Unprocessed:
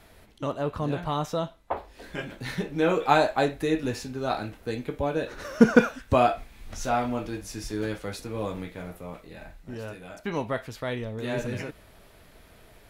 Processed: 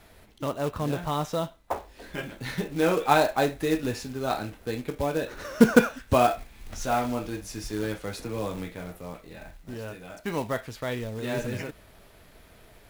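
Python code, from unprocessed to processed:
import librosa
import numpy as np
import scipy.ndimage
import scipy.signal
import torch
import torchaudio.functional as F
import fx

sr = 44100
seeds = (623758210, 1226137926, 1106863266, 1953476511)

y = fx.quant_float(x, sr, bits=2)
y = fx.band_squash(y, sr, depth_pct=40, at=(8.17, 8.75))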